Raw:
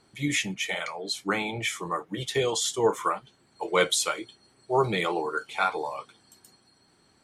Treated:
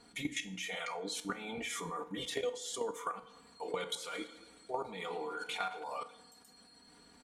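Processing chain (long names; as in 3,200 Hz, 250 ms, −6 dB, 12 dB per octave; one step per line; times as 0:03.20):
comb filter 4.2 ms, depth 92%
output level in coarse steps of 22 dB
brickwall limiter −21.5 dBFS, peak gain reduction 10.5 dB
downward compressor 6 to 1, threshold −40 dBFS, peak gain reduction 13.5 dB
tuned comb filter 62 Hz, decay 0.41 s, harmonics all, mix 50%
feedback delay network reverb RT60 1.2 s, low-frequency decay 0.8×, high-frequency decay 0.55×, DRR 14 dB
0:03.15–0:05.84: feedback echo with a swinging delay time 108 ms, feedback 66%, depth 69 cents, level −17 dB
level +9 dB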